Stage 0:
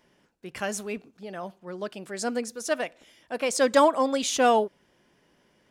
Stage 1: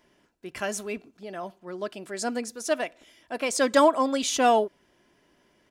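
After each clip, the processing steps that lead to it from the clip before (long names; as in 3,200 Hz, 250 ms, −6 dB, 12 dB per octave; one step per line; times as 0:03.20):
comb filter 3 ms, depth 30%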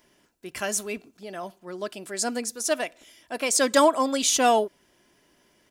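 high-shelf EQ 4,900 Hz +10.5 dB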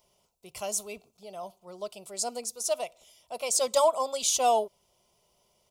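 phaser with its sweep stopped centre 700 Hz, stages 4
level −2.5 dB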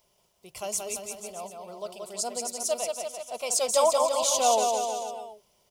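bouncing-ball delay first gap 180 ms, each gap 0.9×, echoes 5
bit reduction 12 bits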